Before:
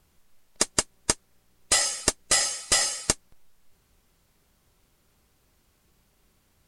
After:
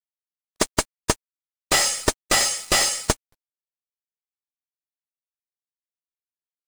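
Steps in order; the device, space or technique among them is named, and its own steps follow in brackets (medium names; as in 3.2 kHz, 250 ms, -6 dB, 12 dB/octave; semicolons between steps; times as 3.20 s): early transistor amplifier (crossover distortion -47.5 dBFS; slew-rate limiter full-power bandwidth 330 Hz); trim +7.5 dB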